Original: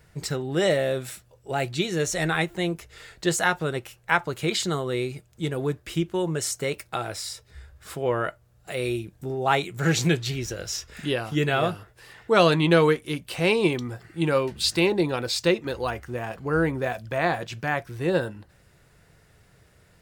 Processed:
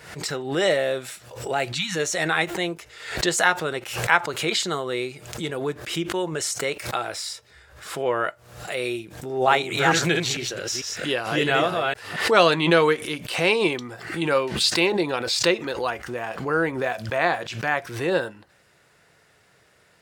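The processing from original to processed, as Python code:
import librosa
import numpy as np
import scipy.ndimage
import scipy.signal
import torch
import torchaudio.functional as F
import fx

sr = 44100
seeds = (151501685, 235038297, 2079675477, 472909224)

y = fx.spec_erase(x, sr, start_s=1.76, length_s=0.2, low_hz=300.0, high_hz=790.0)
y = fx.reverse_delay(y, sr, ms=224, wet_db=-3.0, at=(9.25, 12.31))
y = fx.highpass(y, sr, hz=520.0, slope=6)
y = fx.high_shelf(y, sr, hz=11000.0, db=-10.0)
y = fx.pre_swell(y, sr, db_per_s=81.0)
y = F.gain(torch.from_numpy(y), 4.0).numpy()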